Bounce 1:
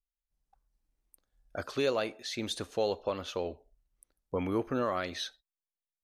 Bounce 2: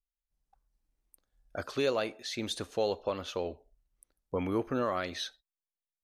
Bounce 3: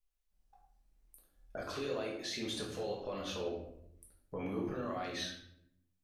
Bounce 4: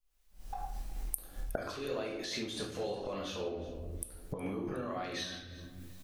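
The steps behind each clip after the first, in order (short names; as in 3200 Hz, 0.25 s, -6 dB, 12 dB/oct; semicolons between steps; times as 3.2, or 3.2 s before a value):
nothing audible
limiter -28 dBFS, peak gain reduction 9 dB; compressor 2.5:1, threshold -42 dBFS, peak gain reduction 7 dB; shoebox room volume 160 m³, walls mixed, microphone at 1.4 m; gain -1 dB
recorder AGC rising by 56 dB/s; feedback echo 0.365 s, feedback 39%, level -19 dB; noise-modulated level, depth 55%; gain +3 dB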